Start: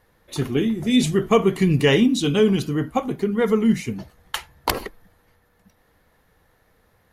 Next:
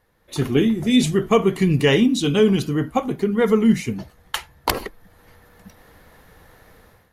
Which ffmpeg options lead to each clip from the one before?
-af "dynaudnorm=f=150:g=5:m=15.5dB,volume=-4dB"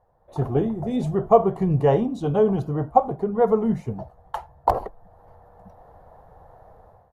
-af "firequalizer=gain_entry='entry(130,0);entry(250,-10);entry(700,10);entry(1300,-7);entry(2200,-22)':delay=0.05:min_phase=1"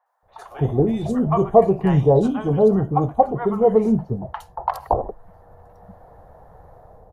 -filter_complex "[0:a]acrossover=split=900|3400[a][b][c];[c]adelay=60[d];[a]adelay=230[e];[e][b][d]amix=inputs=3:normalize=0,volume=4dB"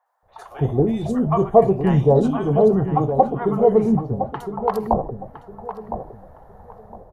-filter_complex "[0:a]asplit=2[a][b];[b]adelay=1011,lowpass=f=1.6k:p=1,volume=-8.5dB,asplit=2[c][d];[d]adelay=1011,lowpass=f=1.6k:p=1,volume=0.27,asplit=2[e][f];[f]adelay=1011,lowpass=f=1.6k:p=1,volume=0.27[g];[a][c][e][g]amix=inputs=4:normalize=0"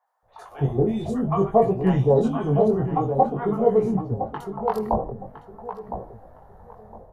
-af "flanger=delay=16:depth=7.5:speed=0.51"

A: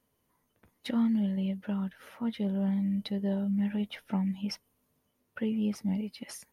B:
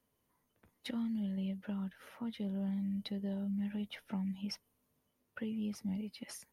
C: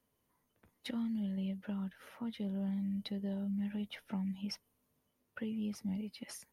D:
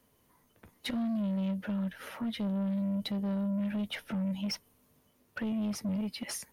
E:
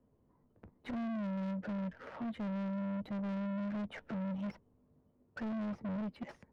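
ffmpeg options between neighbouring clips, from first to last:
-filter_complex "[0:a]acrossover=split=160|3000[a][b][c];[b]acompressor=threshold=-36dB:ratio=4[d];[a][d][c]amix=inputs=3:normalize=0,volume=-4dB"
-af anull
-filter_complex "[0:a]asplit=2[a][b];[b]alimiter=level_in=11.5dB:limit=-24dB:level=0:latency=1,volume=-11.5dB,volume=-2dB[c];[a][c]amix=inputs=2:normalize=0,asoftclip=type=tanh:threshold=-35dB,volume=6dB"
-af "asoftclip=type=hard:threshold=-37dB,adynamicsmooth=sensitivity=5.5:basefreq=670,volume=1dB"

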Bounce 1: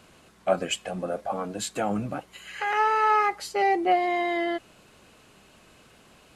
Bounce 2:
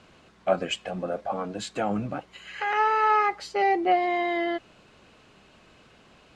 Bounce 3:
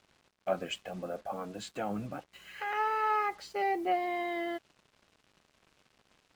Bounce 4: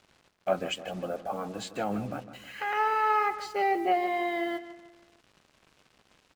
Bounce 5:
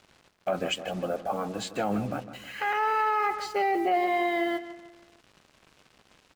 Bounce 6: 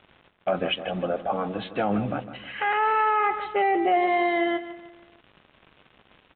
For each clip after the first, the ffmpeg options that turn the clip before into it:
-af "lowpass=5.3k"
-af "acrusher=bits=7:mix=0:aa=0.5,volume=-8dB"
-filter_complex "[0:a]asplit=2[a][b];[b]adelay=157,lowpass=f=3.3k:p=1,volume=-12.5dB,asplit=2[c][d];[d]adelay=157,lowpass=f=3.3k:p=1,volume=0.45,asplit=2[e][f];[f]adelay=157,lowpass=f=3.3k:p=1,volume=0.45,asplit=2[g][h];[h]adelay=157,lowpass=f=3.3k:p=1,volume=0.45[i];[a][c][e][g][i]amix=inputs=5:normalize=0,volume=4dB"
-af "alimiter=limit=-21dB:level=0:latency=1:release=32,volume=3.5dB"
-af "aresample=8000,aresample=44100,volume=3.5dB"

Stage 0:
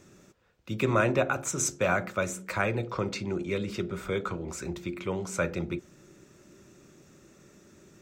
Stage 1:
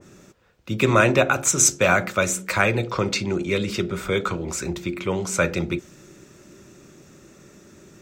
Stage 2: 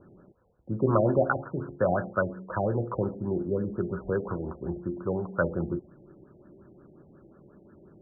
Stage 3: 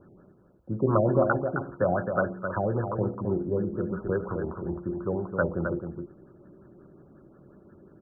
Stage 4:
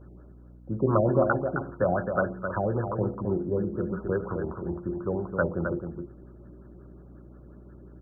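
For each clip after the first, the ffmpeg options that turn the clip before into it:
-af "adynamicequalizer=threshold=0.00891:dfrequency=1900:dqfactor=0.7:tfrequency=1900:tqfactor=0.7:attack=5:release=100:ratio=0.375:range=3:mode=boostabove:tftype=highshelf,volume=7dB"
-af "afftfilt=real='re*lt(b*sr/1024,810*pow(1800/810,0.5+0.5*sin(2*PI*5.6*pts/sr)))':imag='im*lt(b*sr/1024,810*pow(1800/810,0.5+0.5*sin(2*PI*5.6*pts/sr)))':win_size=1024:overlap=0.75,volume=-4.5dB"
-af "aecho=1:1:263:0.473"
-af "aeval=exprs='val(0)+0.00398*(sin(2*PI*60*n/s)+sin(2*PI*2*60*n/s)/2+sin(2*PI*3*60*n/s)/3+sin(2*PI*4*60*n/s)/4+sin(2*PI*5*60*n/s)/5)':c=same"

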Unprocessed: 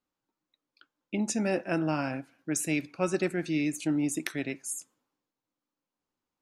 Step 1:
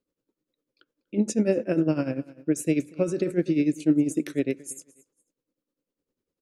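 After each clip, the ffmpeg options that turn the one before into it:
-af "lowshelf=f=630:t=q:w=3:g=7.5,aecho=1:1:242|484:0.1|0.02,tremolo=f=10:d=0.77"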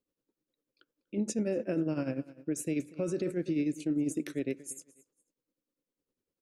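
-af "alimiter=limit=-18dB:level=0:latency=1:release=24,volume=-4.5dB"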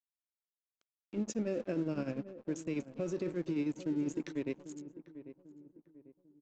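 -filter_complex "[0:a]aresample=16000,aeval=exprs='sgn(val(0))*max(abs(val(0))-0.00316,0)':c=same,aresample=44100,asplit=2[a][b];[b]adelay=795,lowpass=f=1k:p=1,volume=-13dB,asplit=2[c][d];[d]adelay=795,lowpass=f=1k:p=1,volume=0.39,asplit=2[e][f];[f]adelay=795,lowpass=f=1k:p=1,volume=0.39,asplit=2[g][h];[h]adelay=795,lowpass=f=1k:p=1,volume=0.39[i];[a][c][e][g][i]amix=inputs=5:normalize=0,volume=-3dB"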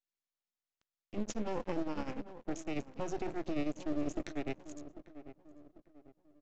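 -af "highpass=45,aresample=16000,aeval=exprs='max(val(0),0)':c=same,aresample=44100,volume=3.5dB"

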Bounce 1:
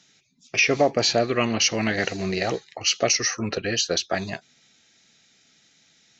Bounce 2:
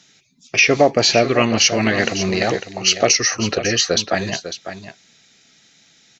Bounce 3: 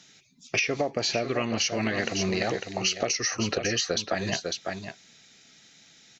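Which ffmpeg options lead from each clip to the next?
-af "aecho=1:1:550:0.282,volume=6dB"
-af "acompressor=threshold=-21dB:ratio=12,volume=-2dB"

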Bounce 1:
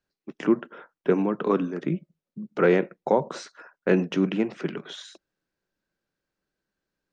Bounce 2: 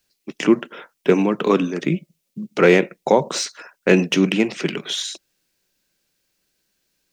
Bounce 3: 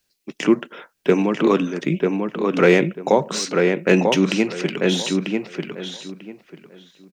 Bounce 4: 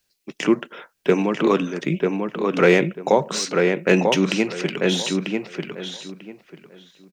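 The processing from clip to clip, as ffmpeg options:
-af "aexciter=amount=1.4:drive=10:freq=2.1k,volume=6dB"
-filter_complex "[0:a]asplit=2[a][b];[b]adelay=943,lowpass=f=2.7k:p=1,volume=-3.5dB,asplit=2[c][d];[d]adelay=943,lowpass=f=2.7k:p=1,volume=0.21,asplit=2[e][f];[f]adelay=943,lowpass=f=2.7k:p=1,volume=0.21[g];[a][c][e][g]amix=inputs=4:normalize=0,volume=-1dB"
-af "equalizer=f=260:t=o:w=0.97:g=-3"

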